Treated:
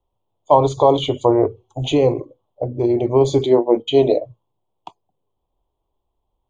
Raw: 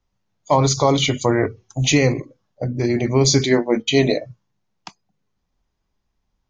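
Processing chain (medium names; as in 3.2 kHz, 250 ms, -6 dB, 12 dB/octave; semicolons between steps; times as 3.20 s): FFT filter 110 Hz 0 dB, 200 Hz -9 dB, 360 Hz +6 dB, 990 Hz +6 dB, 1.7 kHz -23 dB, 3.3 kHz +1 dB, 5.4 kHz -25 dB, 8 kHz -3 dB; trim -1.5 dB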